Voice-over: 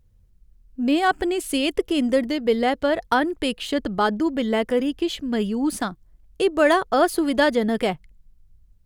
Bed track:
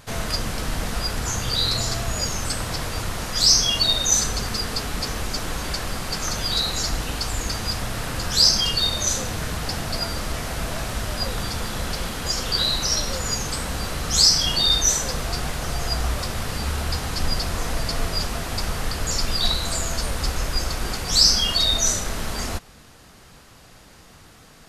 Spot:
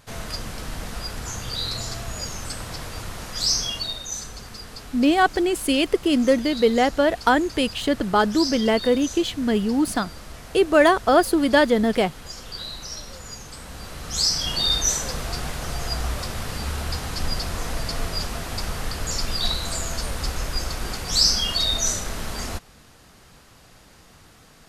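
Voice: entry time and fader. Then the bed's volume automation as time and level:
4.15 s, +2.0 dB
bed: 3.65 s -6 dB
4.05 s -12.5 dB
13.50 s -12.5 dB
14.65 s -2.5 dB

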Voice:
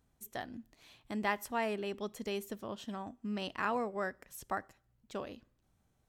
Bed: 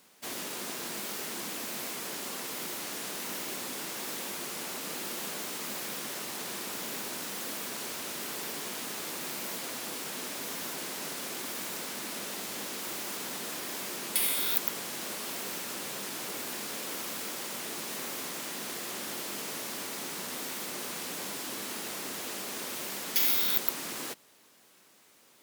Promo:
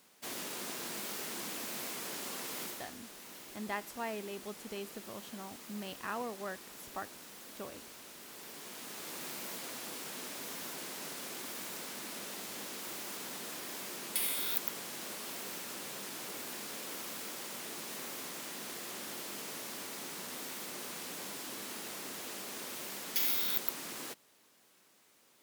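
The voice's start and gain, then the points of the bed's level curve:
2.45 s, -5.0 dB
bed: 2.62 s -3.5 dB
2.97 s -13.5 dB
8.23 s -13.5 dB
9.19 s -5.5 dB

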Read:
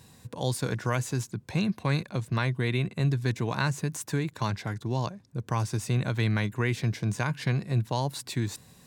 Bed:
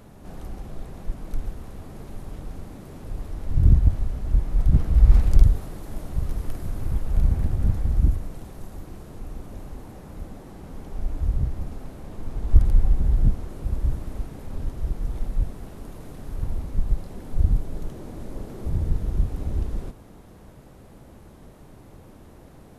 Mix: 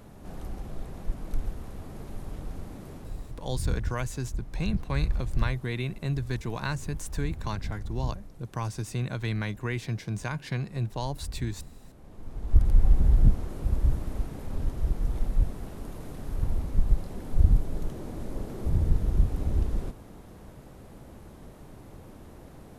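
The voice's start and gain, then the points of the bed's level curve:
3.05 s, -4.0 dB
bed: 2.90 s -1.5 dB
3.64 s -13.5 dB
11.88 s -13.5 dB
12.92 s 0 dB

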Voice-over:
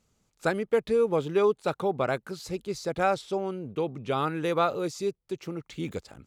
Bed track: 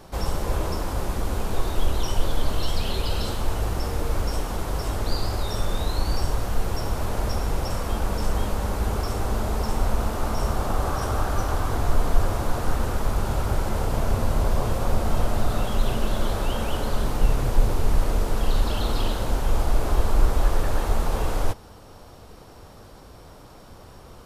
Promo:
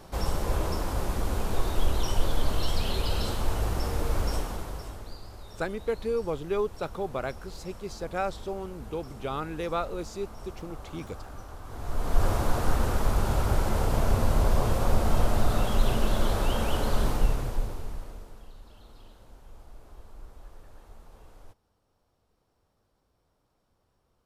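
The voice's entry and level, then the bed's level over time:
5.15 s, -5.0 dB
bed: 4.35 s -2.5 dB
5.19 s -18.5 dB
11.62 s -18.5 dB
12.26 s -1 dB
17.09 s -1 dB
18.56 s -27.5 dB

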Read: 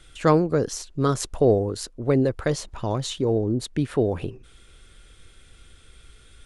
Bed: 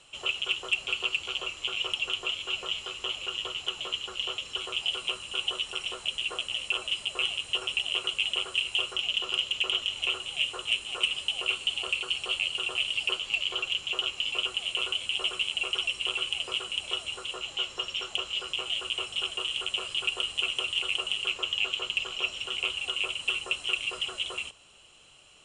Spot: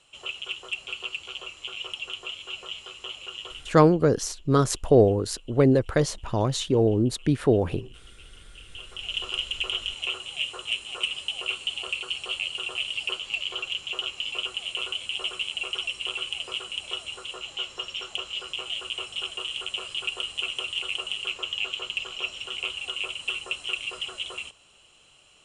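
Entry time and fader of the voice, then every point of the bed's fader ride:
3.50 s, +1.5 dB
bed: 3.52 s -4.5 dB
3.95 s -25.5 dB
8.47 s -25.5 dB
9.16 s -1 dB

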